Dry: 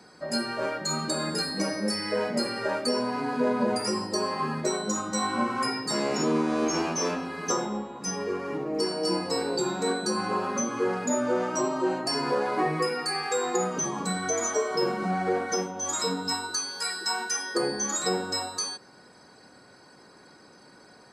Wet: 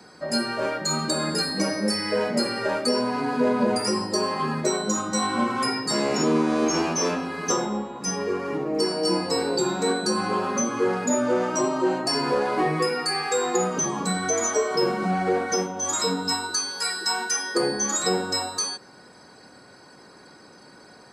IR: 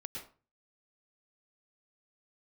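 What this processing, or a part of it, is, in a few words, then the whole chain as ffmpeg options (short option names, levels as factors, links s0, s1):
one-band saturation: -filter_complex "[0:a]acrossover=split=550|2100[s0][s1][s2];[s1]asoftclip=type=tanh:threshold=0.0501[s3];[s0][s3][s2]amix=inputs=3:normalize=0,volume=1.58"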